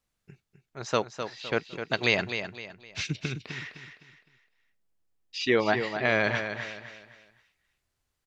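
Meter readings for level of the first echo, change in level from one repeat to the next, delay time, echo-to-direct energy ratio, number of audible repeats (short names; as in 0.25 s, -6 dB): -8.5 dB, -9.0 dB, 0.256 s, -8.0 dB, 3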